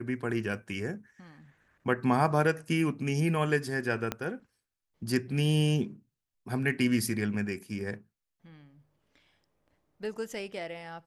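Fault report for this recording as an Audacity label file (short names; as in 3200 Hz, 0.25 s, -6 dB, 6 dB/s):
4.120000	4.120000	pop -15 dBFS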